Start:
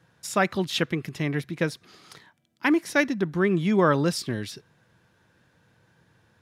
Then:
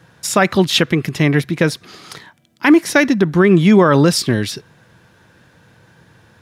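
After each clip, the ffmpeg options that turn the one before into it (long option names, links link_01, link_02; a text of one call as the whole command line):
ffmpeg -i in.wav -af "alimiter=level_in=14dB:limit=-1dB:release=50:level=0:latency=1,volume=-1dB" out.wav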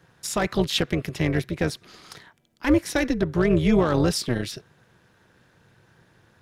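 ffmpeg -i in.wav -filter_complex "[0:a]tremolo=f=240:d=0.75,acrossover=split=700|2800[link_01][link_02][link_03];[link_02]asoftclip=type=tanh:threshold=-19.5dB[link_04];[link_01][link_04][link_03]amix=inputs=3:normalize=0,volume=-5.5dB" out.wav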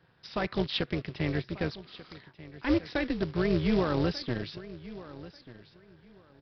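ffmpeg -i in.wav -af "aresample=11025,acrusher=bits=4:mode=log:mix=0:aa=0.000001,aresample=44100,aecho=1:1:1189|2378:0.141|0.0297,volume=-7dB" out.wav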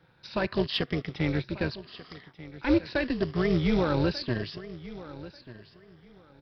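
ffmpeg -i in.wav -filter_complex "[0:a]afftfilt=real='re*pow(10,7/40*sin(2*PI*(1.4*log(max(b,1)*sr/1024/100)/log(2)-(0.8)*(pts-256)/sr)))':imag='im*pow(10,7/40*sin(2*PI*(1.4*log(max(b,1)*sr/1024/100)/log(2)-(0.8)*(pts-256)/sr)))':win_size=1024:overlap=0.75,asplit=2[link_01][link_02];[link_02]asoftclip=type=tanh:threshold=-22.5dB,volume=-12dB[link_03];[link_01][link_03]amix=inputs=2:normalize=0" out.wav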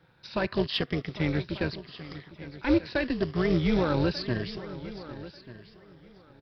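ffmpeg -i in.wav -af "aecho=1:1:804:0.15" out.wav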